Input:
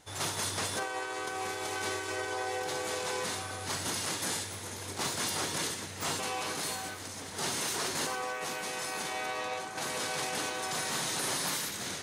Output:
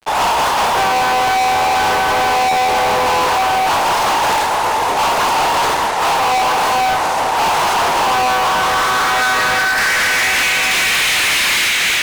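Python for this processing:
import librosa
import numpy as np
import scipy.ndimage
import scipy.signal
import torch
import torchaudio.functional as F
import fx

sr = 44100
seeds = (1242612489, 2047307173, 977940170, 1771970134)

p1 = fx.filter_sweep_bandpass(x, sr, from_hz=870.0, to_hz=2400.0, start_s=8.1, end_s=10.65, q=3.2)
p2 = fx.rider(p1, sr, range_db=4, speed_s=0.5)
p3 = p1 + (p2 * librosa.db_to_amplitude(0.5))
p4 = scipy.signal.sosfilt(scipy.signal.butter(2, 330.0, 'highpass', fs=sr, output='sos'), p3)
p5 = fx.room_flutter(p4, sr, wall_m=6.1, rt60_s=0.23)
y = fx.fuzz(p5, sr, gain_db=48.0, gate_db=-56.0)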